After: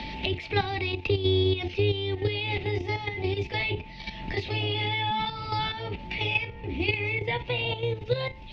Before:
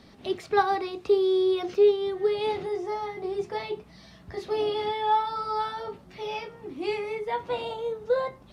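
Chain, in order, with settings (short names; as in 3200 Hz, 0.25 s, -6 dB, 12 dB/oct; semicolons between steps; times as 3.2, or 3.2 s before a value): octaver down 2 oct, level +4 dB; whine 880 Hz -48 dBFS; resonant high shelf 1800 Hz +11 dB, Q 3; level quantiser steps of 10 dB; air absorption 270 m; notch 430 Hz, Q 13; three-band squash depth 70%; gain +3.5 dB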